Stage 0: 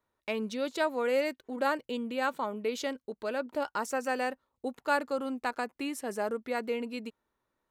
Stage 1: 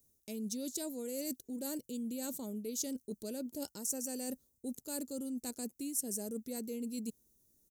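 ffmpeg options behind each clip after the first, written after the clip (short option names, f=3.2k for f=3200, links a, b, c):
-af "firequalizer=gain_entry='entry(200,0);entry(720,-19);entry(1100,-29);entry(6000,7)':delay=0.05:min_phase=1,areverse,acompressor=threshold=-47dB:ratio=6,areverse,highshelf=f=8.6k:g=9.5,volume=9dB"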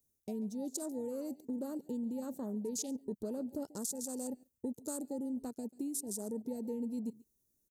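-af "acompressor=threshold=-44dB:ratio=8,aecho=1:1:139:0.119,afwtdn=0.00178,volume=9dB"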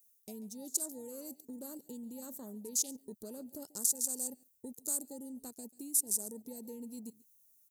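-af "crystalizer=i=6:c=0,volume=-8dB"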